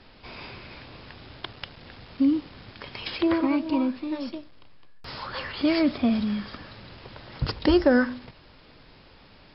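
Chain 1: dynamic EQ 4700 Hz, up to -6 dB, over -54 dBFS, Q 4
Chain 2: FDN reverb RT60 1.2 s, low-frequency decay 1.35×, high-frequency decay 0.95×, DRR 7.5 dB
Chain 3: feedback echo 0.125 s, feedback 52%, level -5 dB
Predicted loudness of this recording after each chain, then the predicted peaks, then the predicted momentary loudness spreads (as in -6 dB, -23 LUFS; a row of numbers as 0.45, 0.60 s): -25.5, -23.5, -24.0 LUFS; -7.5, -5.5, -5.5 dBFS; 22, 21, 21 LU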